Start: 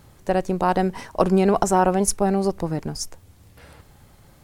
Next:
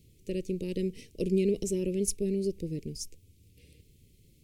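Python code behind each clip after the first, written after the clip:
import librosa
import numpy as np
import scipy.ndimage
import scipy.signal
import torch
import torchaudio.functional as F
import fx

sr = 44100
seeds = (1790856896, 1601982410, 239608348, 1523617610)

y = scipy.signal.sosfilt(scipy.signal.ellip(3, 1.0, 40, [440.0, 2400.0], 'bandstop', fs=sr, output='sos'), x)
y = fx.dynamic_eq(y, sr, hz=840.0, q=0.8, threshold_db=-39.0, ratio=4.0, max_db=4)
y = y * librosa.db_to_amplitude(-8.5)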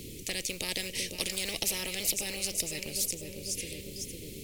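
y = fx.quant_float(x, sr, bits=6)
y = fx.echo_feedback(y, sr, ms=502, feedback_pct=40, wet_db=-14)
y = fx.spectral_comp(y, sr, ratio=10.0)
y = y * librosa.db_to_amplitude(5.5)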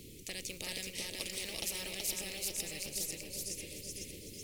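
y = fx.echo_feedback(x, sr, ms=377, feedback_pct=34, wet_db=-3)
y = y * librosa.db_to_amplitude(-8.0)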